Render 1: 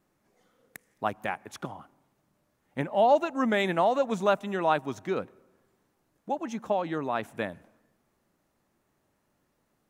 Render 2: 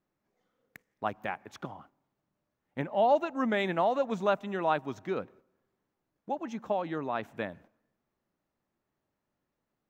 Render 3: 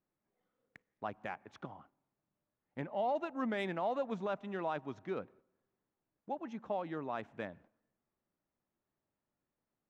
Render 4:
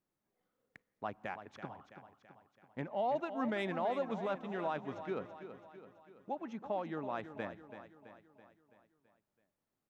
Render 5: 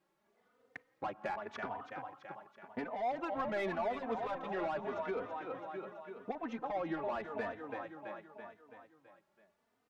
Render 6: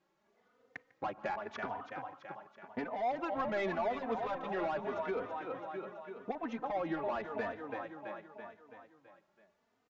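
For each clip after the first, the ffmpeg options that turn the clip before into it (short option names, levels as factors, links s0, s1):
-af "agate=range=0.447:threshold=0.00251:ratio=16:detection=peak,equalizer=f=10000:t=o:w=0.83:g=-14,volume=0.708"
-af "alimiter=limit=0.0944:level=0:latency=1:release=17,adynamicsmooth=sensitivity=4:basefreq=4600,volume=0.501"
-af "aecho=1:1:331|662|993|1324|1655|1986:0.282|0.152|0.0822|0.0444|0.024|0.0129"
-filter_complex "[0:a]asplit=2[s0][s1];[s1]highpass=f=720:p=1,volume=7.94,asoftclip=type=tanh:threshold=0.0631[s2];[s0][s2]amix=inputs=2:normalize=0,lowpass=f=1500:p=1,volume=0.501,acompressor=threshold=0.00891:ratio=2.5,asplit=2[s3][s4];[s4]adelay=3.2,afreqshift=0.87[s5];[s3][s5]amix=inputs=2:normalize=1,volume=2.11"
-af "aresample=16000,aresample=44100,aecho=1:1:148:0.0794,volume=1.19"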